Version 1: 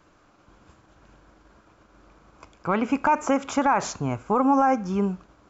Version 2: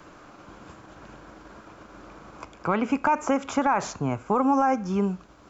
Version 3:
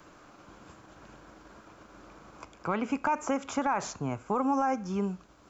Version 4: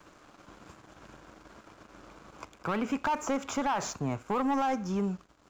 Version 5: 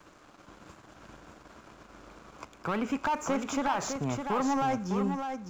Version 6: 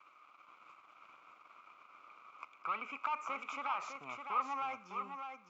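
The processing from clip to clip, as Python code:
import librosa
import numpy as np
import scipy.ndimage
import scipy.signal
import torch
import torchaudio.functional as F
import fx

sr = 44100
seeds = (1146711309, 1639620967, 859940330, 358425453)

y1 = fx.band_squash(x, sr, depth_pct=40)
y1 = y1 * 10.0 ** (-1.0 / 20.0)
y2 = fx.high_shelf(y1, sr, hz=5500.0, db=6.0)
y2 = y2 * 10.0 ** (-6.0 / 20.0)
y3 = fx.leveller(y2, sr, passes=2)
y3 = y3 * 10.0 ** (-5.5 / 20.0)
y4 = y3 + 10.0 ** (-6.5 / 20.0) * np.pad(y3, (int(607 * sr / 1000.0), 0))[:len(y3)]
y5 = fx.double_bandpass(y4, sr, hz=1700.0, octaves=0.9)
y5 = y5 * 10.0 ** (2.5 / 20.0)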